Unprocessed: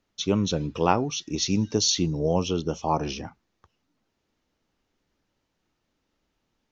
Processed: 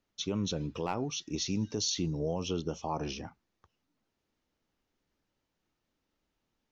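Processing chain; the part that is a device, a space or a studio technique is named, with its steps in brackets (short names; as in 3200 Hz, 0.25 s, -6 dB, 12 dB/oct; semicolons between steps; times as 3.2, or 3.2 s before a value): clipper into limiter (hard clip -10 dBFS, distortion -23 dB; limiter -16.5 dBFS, peak gain reduction 6.5 dB); gain -6 dB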